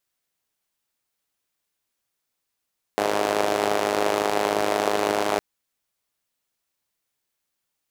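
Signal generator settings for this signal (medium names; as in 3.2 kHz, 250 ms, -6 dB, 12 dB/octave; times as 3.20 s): four-cylinder engine model, steady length 2.41 s, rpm 3100, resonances 420/620 Hz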